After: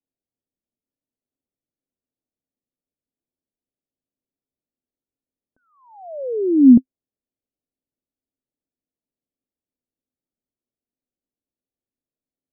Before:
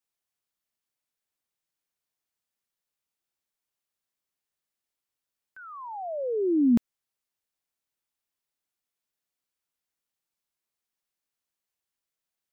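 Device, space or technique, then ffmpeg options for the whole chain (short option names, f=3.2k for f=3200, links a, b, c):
under water: -af "lowpass=f=590:w=0.5412,lowpass=f=590:w=1.3066,equalizer=f=260:t=o:w=0.34:g=9.5,volume=4.5dB"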